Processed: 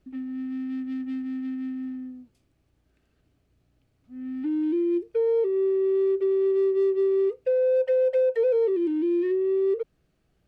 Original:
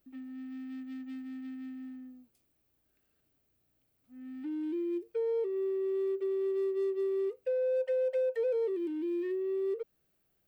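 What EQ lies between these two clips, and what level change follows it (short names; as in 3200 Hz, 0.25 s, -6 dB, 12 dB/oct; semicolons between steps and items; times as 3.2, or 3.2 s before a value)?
air absorption 61 m; low shelf 210 Hz +9.5 dB; +7.0 dB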